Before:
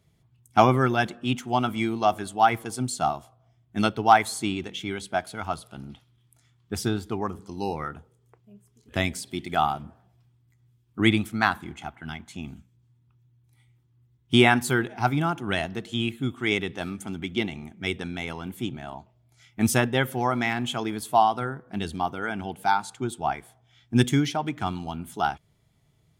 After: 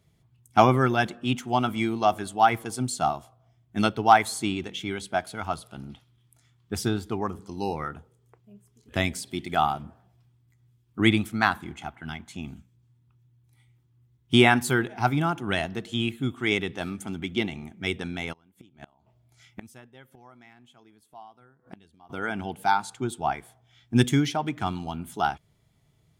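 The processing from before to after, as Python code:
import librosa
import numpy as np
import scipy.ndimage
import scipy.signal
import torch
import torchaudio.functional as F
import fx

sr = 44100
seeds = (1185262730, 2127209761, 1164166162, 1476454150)

y = fx.gate_flip(x, sr, shuts_db=-26.0, range_db=-27, at=(18.32, 22.09), fade=0.02)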